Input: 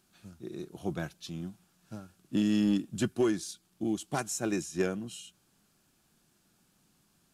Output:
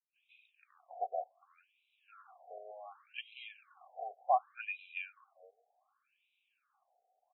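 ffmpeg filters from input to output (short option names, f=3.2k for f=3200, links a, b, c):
-filter_complex "[0:a]asettb=1/sr,asplit=3[a][b][c];[a]atrim=end=2.024[d];[b]atrim=start=2.02:end=4.38,asetpts=PTS-STARTPTS,afade=t=in:d=0.004:c=qsin,afade=t=out:st=2.356:d=0.004:c=qsin,aeval=exprs='val(0)+0.5*0.00473*sgn(val(0))':c=same[e];[c]atrim=start=4.376[f];[d][e]acrossfade=d=0.004:c1=hsin:c2=qsin[g];[g][f]acrossfade=d=0.004:c1=qsin:c2=hsin,asplit=3[h][i][j];[h]bandpass=f=730:t=q:w=8,volume=0dB[k];[i]bandpass=f=1.09k:t=q:w=8,volume=-6dB[l];[j]bandpass=f=2.44k:t=q:w=8,volume=-9dB[m];[k][l][m]amix=inputs=3:normalize=0,highshelf=f=2k:g=11,acrossover=split=320|4100[n][o][p];[o]adelay=160[q];[n]adelay=560[r];[r][q][p]amix=inputs=3:normalize=0,afftfilt=real='re*between(b*sr/1024,560*pow(2900/560,0.5+0.5*sin(2*PI*0.67*pts/sr))/1.41,560*pow(2900/560,0.5+0.5*sin(2*PI*0.67*pts/sr))*1.41)':imag='im*between(b*sr/1024,560*pow(2900/560,0.5+0.5*sin(2*PI*0.67*pts/sr))/1.41,560*pow(2900/560,0.5+0.5*sin(2*PI*0.67*pts/sr))*1.41)':win_size=1024:overlap=0.75,volume=10dB"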